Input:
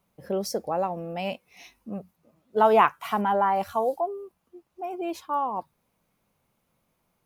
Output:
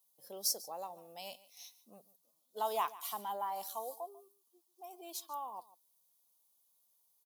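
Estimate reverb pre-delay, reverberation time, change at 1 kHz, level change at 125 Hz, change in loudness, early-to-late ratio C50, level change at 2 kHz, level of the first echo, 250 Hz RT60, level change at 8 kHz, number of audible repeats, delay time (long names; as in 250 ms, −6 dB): no reverb audible, no reverb audible, −15.0 dB, below −25 dB, −13.5 dB, no reverb audible, −20.0 dB, −18.5 dB, no reverb audible, can't be measured, 1, 144 ms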